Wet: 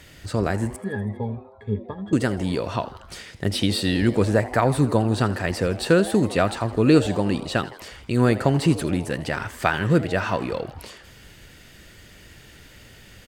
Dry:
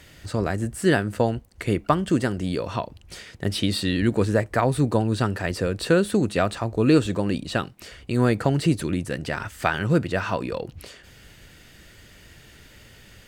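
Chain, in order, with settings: 0.76–2.13 s: pitch-class resonator G#, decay 0.1 s; frequency-shifting echo 81 ms, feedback 60%, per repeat +140 Hz, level -17 dB; trim +1.5 dB

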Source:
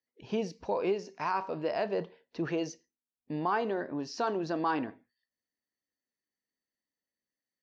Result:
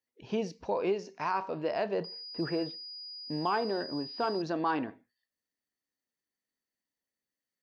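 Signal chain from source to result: 2.04–4.42 s: class-D stage that switches slowly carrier 4.9 kHz

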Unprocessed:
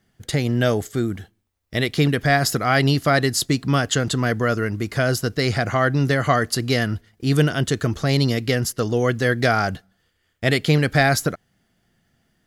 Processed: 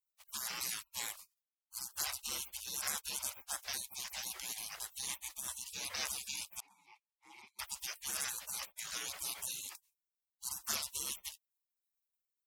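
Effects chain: spectral peaks clipped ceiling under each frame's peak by 14 dB; 3.78–5.07 s: band-stop 790 Hz, Q 12; in parallel at -9.5 dB: saturation -14 dBFS, distortion -12 dB; on the sum: high-pass 150 Hz 12 dB/octave; spectral gate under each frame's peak -30 dB weak; 6.60–7.59 s: vowel filter u; trim +1 dB

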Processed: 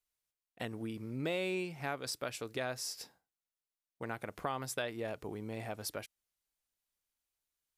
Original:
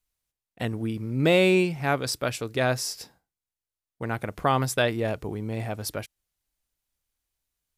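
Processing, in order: bass shelf 170 Hz -10.5 dB; compression 2.5:1, threshold -31 dBFS, peak gain reduction 9.5 dB; trim -5.5 dB

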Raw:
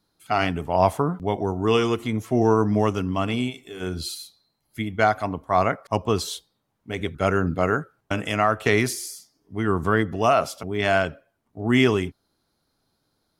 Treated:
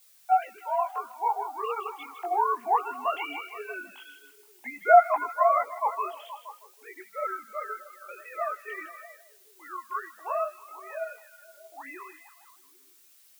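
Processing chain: formants replaced by sine waves; Doppler pass-by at 4.23 s, 12 m/s, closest 6.8 m; gate with hold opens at -52 dBFS; in parallel at +2 dB: peak limiter -28.5 dBFS, peak gain reduction 17.5 dB; on the sum: resonant high-pass 830 Hz, resonance Q 4.9; added noise blue -55 dBFS; chorus voices 4, 0.74 Hz, delay 20 ms, depth 1.3 ms; on a send: repeats whose band climbs or falls 158 ms, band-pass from 2.8 kHz, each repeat -0.7 oct, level -8.5 dB

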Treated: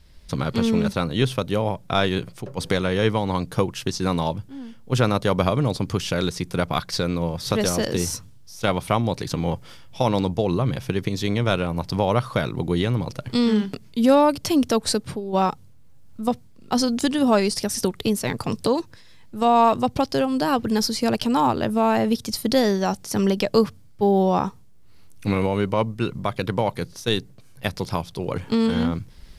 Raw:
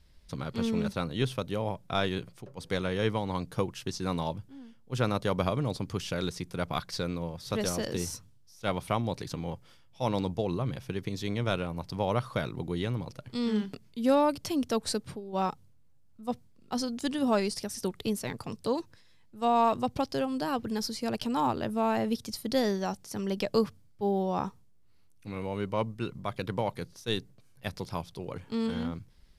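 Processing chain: recorder AGC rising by 11 dB/s; trim +8 dB

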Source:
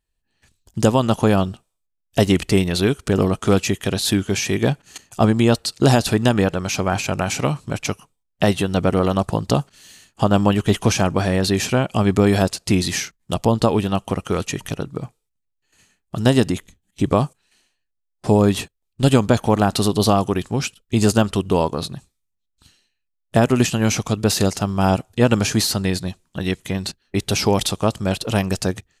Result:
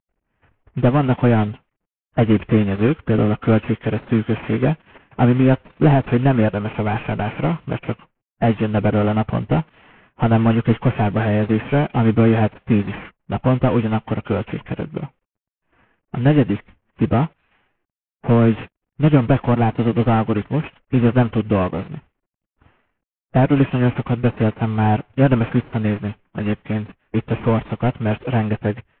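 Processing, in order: CVSD coder 16 kbps; formant-preserving pitch shift +2 st; level-controlled noise filter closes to 1.8 kHz, open at -17 dBFS; trim +2.5 dB

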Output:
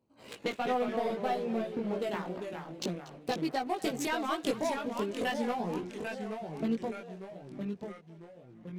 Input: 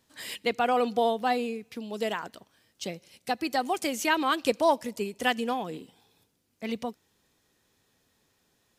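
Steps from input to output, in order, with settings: local Wiener filter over 25 samples; high-pass 99 Hz 12 dB/octave; waveshaping leveller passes 2; compression 16:1, threshold -32 dBFS, peak gain reduction 18.5 dB; thinning echo 238 ms, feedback 67%, high-pass 460 Hz, level -18 dB; chorus voices 2, 0.33 Hz, delay 18 ms, depth 1.9 ms; ever faster or slower copies 152 ms, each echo -2 st, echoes 3, each echo -6 dB; trim +5.5 dB

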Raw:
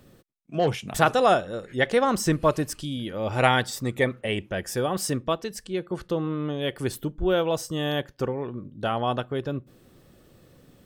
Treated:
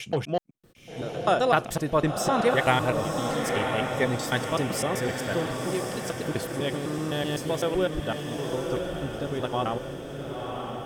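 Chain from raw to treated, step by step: slices played last to first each 127 ms, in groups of 7; echo that smears into a reverb 1015 ms, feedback 54%, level -4.5 dB; trim -2.5 dB

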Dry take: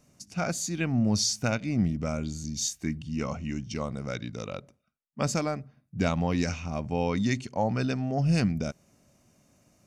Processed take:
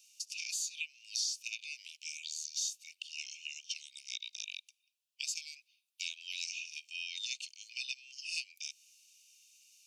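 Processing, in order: steep high-pass 2.5 kHz 96 dB/octave; treble shelf 4.8 kHz -7.5 dB; compression 3:1, threshold -50 dBFS, peak gain reduction 16 dB; trim +12 dB

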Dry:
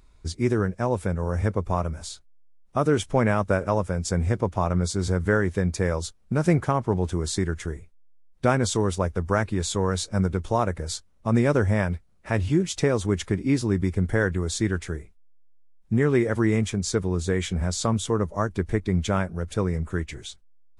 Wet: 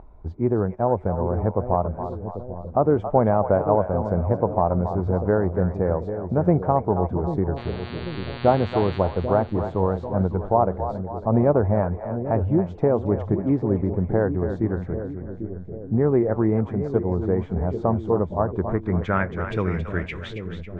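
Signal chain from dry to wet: upward compressor, threshold -37 dBFS; low-pass sweep 780 Hz -> 2.5 kHz, 18.42–19.46 s; 7.56–8.97 s: mains buzz 120 Hz, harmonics 38, -38 dBFS -4 dB/octave; two-band feedback delay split 560 Hz, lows 792 ms, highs 275 ms, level -9 dB

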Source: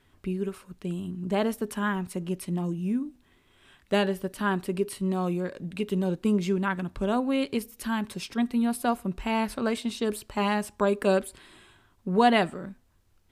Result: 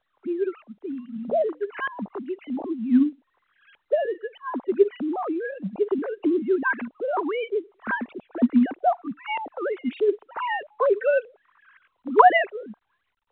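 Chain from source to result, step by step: formants replaced by sine waves; 9.06–9.28 s: spectral selection erased 320–970 Hz; LFO low-pass saw up 1.6 Hz 550–2600 Hz; 0.91–1.73 s: hum notches 60/120/180/240/300 Hz; trim +1.5 dB; µ-law 64 kbps 8 kHz

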